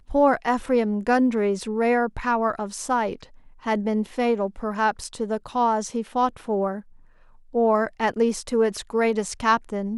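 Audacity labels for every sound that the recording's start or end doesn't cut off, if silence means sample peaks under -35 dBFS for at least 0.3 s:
3.650000	6.800000	sound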